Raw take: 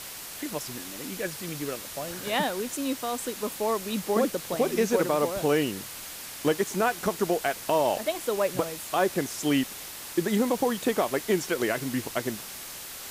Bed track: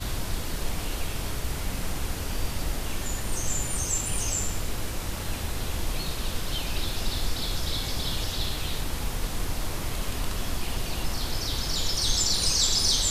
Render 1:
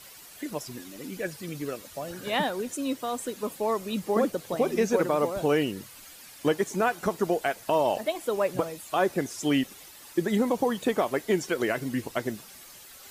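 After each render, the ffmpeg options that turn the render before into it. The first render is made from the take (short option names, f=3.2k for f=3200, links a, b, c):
-af "afftdn=nr=11:nf=-40"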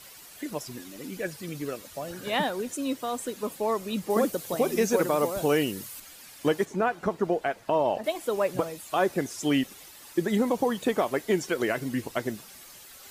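-filter_complex "[0:a]asettb=1/sr,asplit=3[a][b][c];[a]atrim=end=4.104[d];[b]atrim=start=4.1:end=6,asetpts=PTS-STARTPTS,afade=t=in:d=0.004:c=qsin,afade=t=out:st=1.896:d=0.004:c=qsin,highshelf=f=6.3k:g=10[e];[c]atrim=start=5.996[f];[d][e]acrossfade=d=0.004:c1=hsin:c2=qsin[g];[g][f]acrossfade=d=0.004:c1=qsin:c2=hsin,asettb=1/sr,asplit=3[h][i][j];[h]atrim=end=6.654[k];[i]atrim=start=6.65:end=8.04,asetpts=PTS-STARTPTS,afade=t=in:d=0.004:c=qsin,afade=t=out:st=1.386:d=0.004:c=qsin,lowpass=f=2k:p=1[l];[j]atrim=start=8.036[m];[k][l]acrossfade=d=0.004:c1=hsin:c2=qsin[n];[n][m]acrossfade=d=0.004:c1=qsin:c2=hsin"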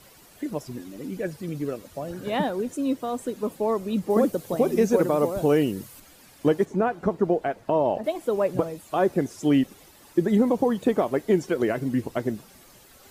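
-af "tiltshelf=f=930:g=6"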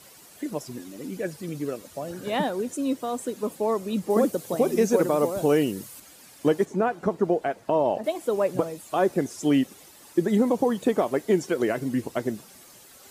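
-af "highpass=f=140:p=1,equalizer=f=8.3k:w=0.67:g=5"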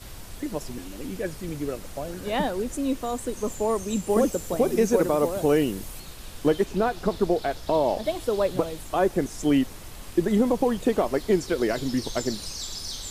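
-filter_complex "[1:a]volume=-11.5dB[a];[0:a][a]amix=inputs=2:normalize=0"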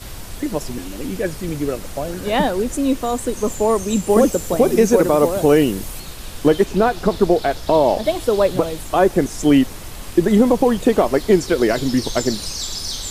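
-af "volume=8dB,alimiter=limit=-3dB:level=0:latency=1"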